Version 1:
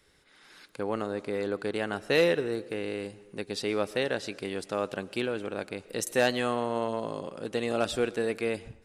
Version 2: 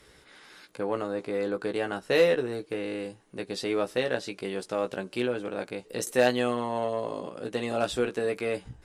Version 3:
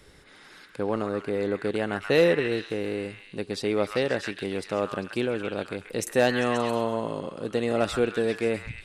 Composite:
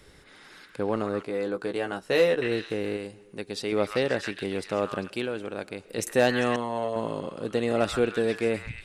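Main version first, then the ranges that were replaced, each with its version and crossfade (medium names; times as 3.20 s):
3
1.23–2.42 s: from 2
2.97–3.72 s: from 1
5.10–5.98 s: from 1
6.56–6.96 s: from 2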